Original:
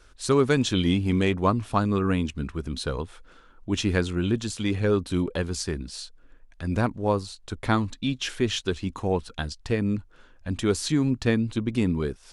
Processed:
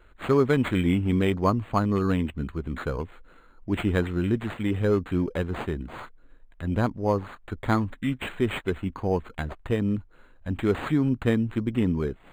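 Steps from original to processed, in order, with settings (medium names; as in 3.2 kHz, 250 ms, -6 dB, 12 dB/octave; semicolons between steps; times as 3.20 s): decimation joined by straight lines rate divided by 8×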